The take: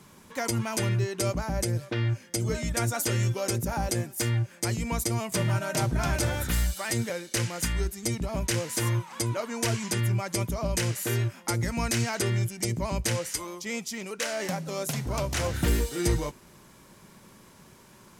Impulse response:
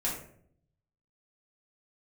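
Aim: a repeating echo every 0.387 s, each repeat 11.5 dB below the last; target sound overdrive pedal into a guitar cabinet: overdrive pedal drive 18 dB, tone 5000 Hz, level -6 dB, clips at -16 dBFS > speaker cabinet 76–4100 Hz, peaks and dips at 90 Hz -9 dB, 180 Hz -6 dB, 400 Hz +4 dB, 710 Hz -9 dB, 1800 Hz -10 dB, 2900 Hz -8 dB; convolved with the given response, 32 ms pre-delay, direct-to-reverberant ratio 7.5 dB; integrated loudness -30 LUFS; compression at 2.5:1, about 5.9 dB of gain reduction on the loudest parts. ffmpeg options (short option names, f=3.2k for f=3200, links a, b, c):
-filter_complex "[0:a]acompressor=threshold=-29dB:ratio=2.5,aecho=1:1:387|774|1161:0.266|0.0718|0.0194,asplit=2[a][b];[1:a]atrim=start_sample=2205,adelay=32[c];[b][c]afir=irnorm=-1:irlink=0,volume=-13dB[d];[a][d]amix=inputs=2:normalize=0,asplit=2[e][f];[f]highpass=f=720:p=1,volume=18dB,asoftclip=type=tanh:threshold=-16dB[g];[e][g]amix=inputs=2:normalize=0,lowpass=f=5k:p=1,volume=-6dB,highpass=76,equalizer=f=90:t=q:w=4:g=-9,equalizer=f=180:t=q:w=4:g=-6,equalizer=f=400:t=q:w=4:g=4,equalizer=f=710:t=q:w=4:g=-9,equalizer=f=1.8k:t=q:w=4:g=-10,equalizer=f=2.9k:t=q:w=4:g=-8,lowpass=f=4.1k:w=0.5412,lowpass=f=4.1k:w=1.3066,volume=0.5dB"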